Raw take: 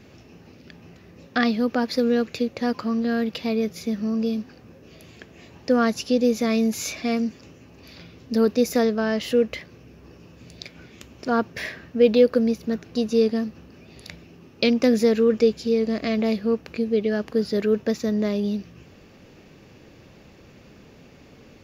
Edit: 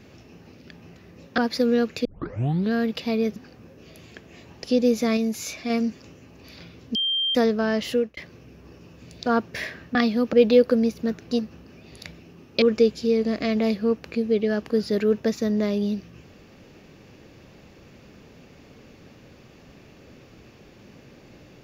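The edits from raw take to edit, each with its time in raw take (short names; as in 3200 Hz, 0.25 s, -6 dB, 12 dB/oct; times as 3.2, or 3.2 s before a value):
1.38–1.76 move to 11.97
2.43 tape start 0.68 s
3.74–4.41 cut
5.69–6.03 cut
6.56–7.09 gain -3.5 dB
8.34–8.74 bleep 3170 Hz -21 dBFS
9.29–9.56 fade out
10.65–11.28 cut
13.03–13.43 cut
14.66–15.24 cut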